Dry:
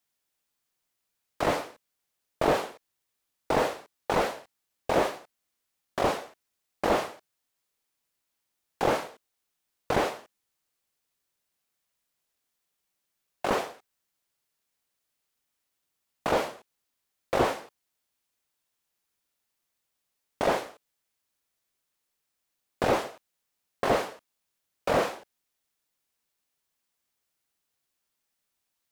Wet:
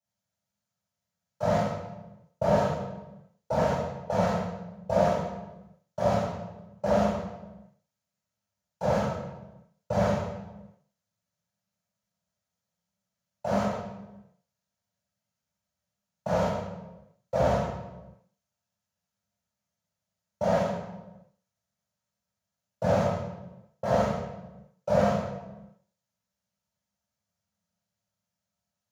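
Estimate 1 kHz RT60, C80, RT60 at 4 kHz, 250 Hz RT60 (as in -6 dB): 1.0 s, 2.5 dB, 0.75 s, 1.6 s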